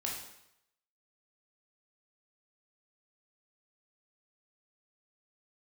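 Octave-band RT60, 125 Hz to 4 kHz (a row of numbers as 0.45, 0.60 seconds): 0.80, 0.70, 0.75, 0.80, 0.80, 0.75 seconds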